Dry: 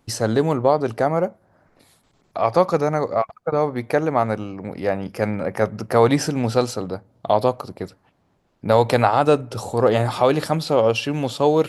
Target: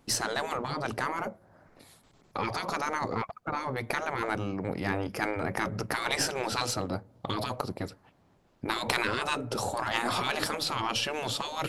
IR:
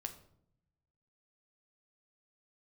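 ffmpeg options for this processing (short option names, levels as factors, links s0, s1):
-af "afftfilt=real='re*lt(hypot(re,im),0.251)':imag='im*lt(hypot(re,im),0.251)':win_size=1024:overlap=0.75,aeval=exprs='0.355*(cos(1*acos(clip(val(0)/0.355,-1,1)))-cos(1*PI/2))+0.0316*(cos(4*acos(clip(val(0)/0.355,-1,1)))-cos(4*PI/2))':c=same"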